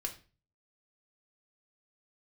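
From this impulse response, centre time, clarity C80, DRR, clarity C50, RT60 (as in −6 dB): 11 ms, 17.5 dB, 2.0 dB, 12.5 dB, 0.35 s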